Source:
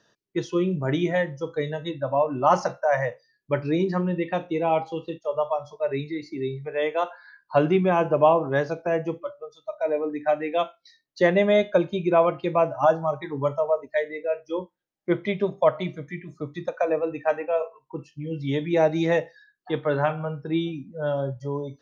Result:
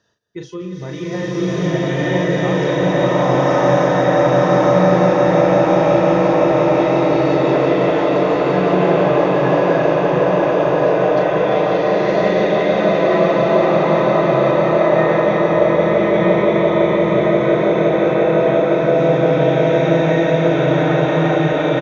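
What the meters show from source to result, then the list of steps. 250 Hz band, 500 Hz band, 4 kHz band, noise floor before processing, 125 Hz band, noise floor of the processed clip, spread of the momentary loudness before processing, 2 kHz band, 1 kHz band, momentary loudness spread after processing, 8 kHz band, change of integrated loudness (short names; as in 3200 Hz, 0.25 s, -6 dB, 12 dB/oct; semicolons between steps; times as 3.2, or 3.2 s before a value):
+11.5 dB, +10.5 dB, +10.5 dB, -74 dBFS, +11.5 dB, -24 dBFS, 12 LU, +10.0 dB, +9.0 dB, 4 LU, n/a, +10.5 dB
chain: regenerating reverse delay 0.614 s, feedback 67%, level -7.5 dB; bell 82 Hz +12.5 dB 0.59 oct; doubler 38 ms -5 dB; compressor, threshold -22 dBFS, peak gain reduction 11 dB; on a send: swelling echo 0.172 s, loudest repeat 5, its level -9 dB; on the sum: bloom reverb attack 1.13 s, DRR -11.5 dB; gain -2.5 dB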